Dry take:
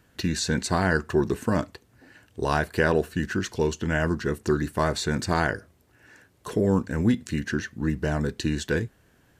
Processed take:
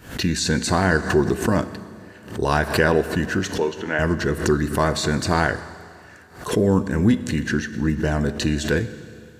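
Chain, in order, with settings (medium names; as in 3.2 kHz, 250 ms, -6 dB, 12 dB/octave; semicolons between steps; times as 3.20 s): 3.58–3.99 s: band-pass 340–3200 Hz; Schroeder reverb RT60 2.3 s, combs from 28 ms, DRR 12.5 dB; swell ahead of each attack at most 120 dB/s; trim +4 dB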